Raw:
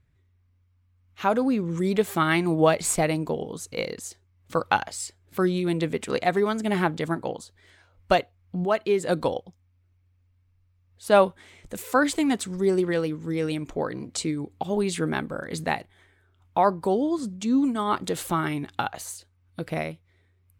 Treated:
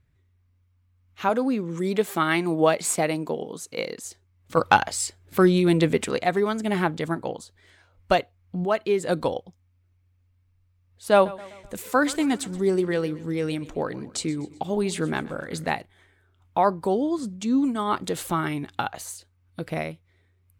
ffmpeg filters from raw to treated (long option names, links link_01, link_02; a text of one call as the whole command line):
ffmpeg -i in.wav -filter_complex "[0:a]asettb=1/sr,asplit=3[link_01][link_02][link_03];[link_01]atrim=end=1.294[link_04];[link_02]atrim=start=1.29:end=4.05,asetpts=PTS-STARTPTS,afade=type=in:duration=0.004:curve=qsin,afade=type=out:start_time=2.756:duration=0.004:curve=qsin,highpass=180[link_05];[link_03]atrim=start=4.046[link_06];[link_04][link_05]acrossfade=duration=0.004:curve1=hsin:curve2=qsin[link_07];[link_07][link_06]acrossfade=duration=0.004:curve1=qsin:curve2=hsin,asplit=3[link_08][link_09][link_10];[link_08]afade=type=out:start_time=4.56:duration=0.02[link_11];[link_09]acontrast=50,afade=type=in:start_time=4.56:duration=0.02,afade=type=out:start_time=6.08:duration=0.02[link_12];[link_10]afade=type=in:start_time=6.08:duration=0.02[link_13];[link_11][link_12][link_13]amix=inputs=3:normalize=0,asettb=1/sr,asplit=3[link_14][link_15][link_16];[link_14]atrim=end=11.134[link_17];[link_15]atrim=start=11.13:end=15.7,asetpts=PTS-STARTPTS,afade=type=in:duration=0.004:curve=qsin,afade=type=out:start_time=4.566:duration=0.004:curve=qsin,aecho=1:1:126|252|378|504:0.112|0.0572|0.0292|0.0149,atrim=end_sample=201537[link_18];[link_16]atrim=start=15.696[link_19];[link_17][link_18]acrossfade=duration=0.004:curve1=hsin:curve2=qsin[link_20];[link_20][link_19]acrossfade=duration=0.004:curve1=qsin:curve2=hsin" out.wav